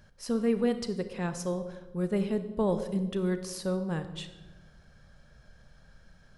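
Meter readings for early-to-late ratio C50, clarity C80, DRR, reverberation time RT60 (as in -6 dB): 11.0 dB, 12.5 dB, 9.5 dB, 1.3 s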